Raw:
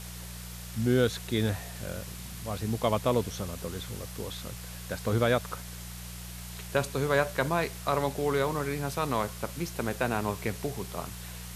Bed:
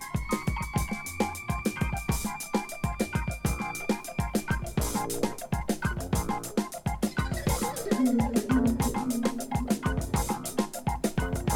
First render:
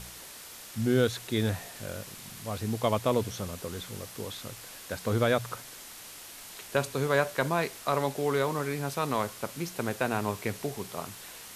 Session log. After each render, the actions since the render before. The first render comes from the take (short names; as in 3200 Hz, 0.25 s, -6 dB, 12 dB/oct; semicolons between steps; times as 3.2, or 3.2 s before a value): de-hum 60 Hz, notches 3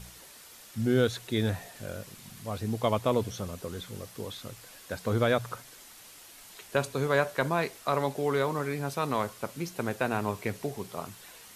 denoiser 6 dB, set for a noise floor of -46 dBFS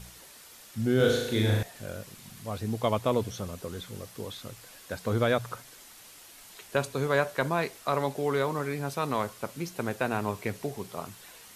0.96–1.63 flutter echo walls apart 6.5 m, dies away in 0.9 s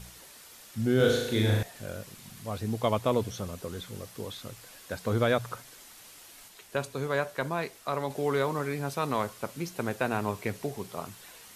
6.48–8.1 gain -3.5 dB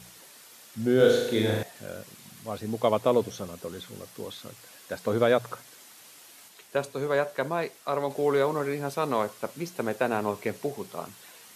dynamic EQ 500 Hz, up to +5 dB, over -37 dBFS, Q 0.95; HPF 140 Hz 12 dB/oct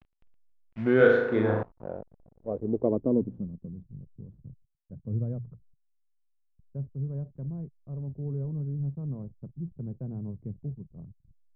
backlash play -33 dBFS; low-pass sweep 2800 Hz -> 140 Hz, 0.56–3.91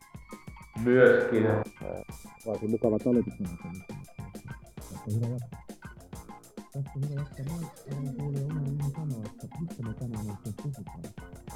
add bed -16 dB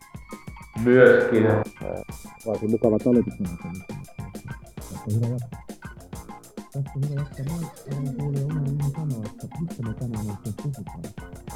gain +6 dB; limiter -3 dBFS, peak gain reduction 1.5 dB